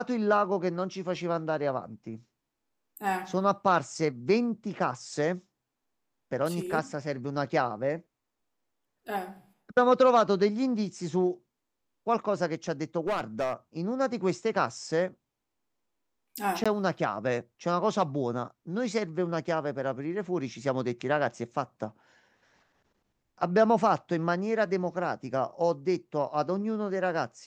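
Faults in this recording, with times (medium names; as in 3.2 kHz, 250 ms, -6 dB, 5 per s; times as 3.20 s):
13.07–13.54 s: clipped -24.5 dBFS
16.64–16.66 s: dropout 16 ms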